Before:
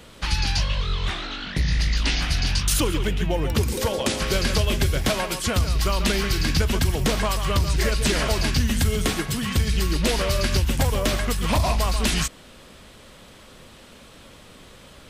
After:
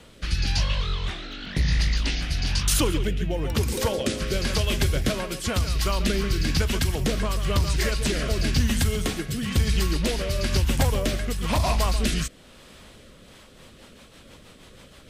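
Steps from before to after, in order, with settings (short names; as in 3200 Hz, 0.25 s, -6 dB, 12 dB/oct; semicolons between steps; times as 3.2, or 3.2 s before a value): rotary speaker horn 1 Hz, later 6.3 Hz, at 13; 1.31–2.09 crackle 22/s -> 100/s -42 dBFS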